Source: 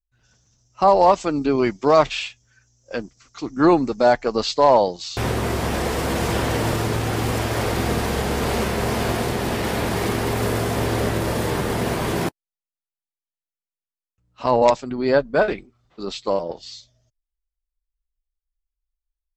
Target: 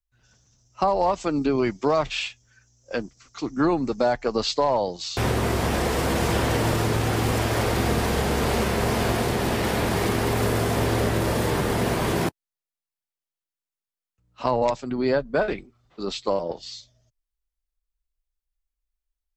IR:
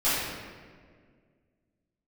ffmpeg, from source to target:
-filter_complex "[0:a]acrossover=split=130[link_01][link_02];[link_02]acompressor=threshold=-19dB:ratio=4[link_03];[link_01][link_03]amix=inputs=2:normalize=0"

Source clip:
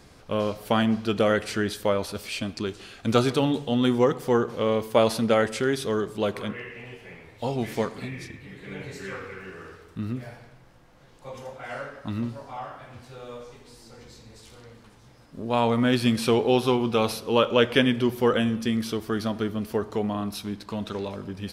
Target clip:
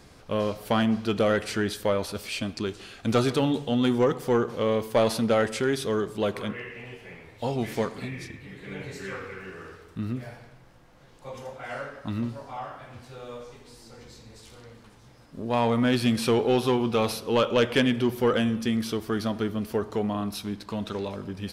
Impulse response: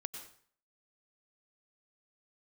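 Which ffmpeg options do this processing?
-af "asoftclip=type=tanh:threshold=-13dB"

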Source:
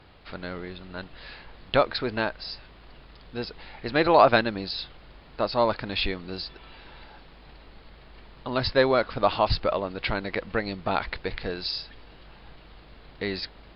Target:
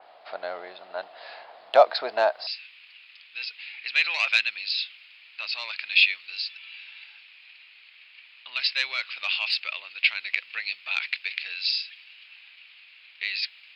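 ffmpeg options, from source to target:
ffmpeg -i in.wav -af "acontrast=75,asetnsamples=nb_out_samples=441:pad=0,asendcmd='2.47 highpass f 2500',highpass=frequency=680:width_type=q:width=6,adynamicequalizer=threshold=0.0316:dfrequency=3900:dqfactor=0.7:tfrequency=3900:tqfactor=0.7:attack=5:release=100:ratio=0.375:range=3:mode=boostabove:tftype=highshelf,volume=-8.5dB" out.wav

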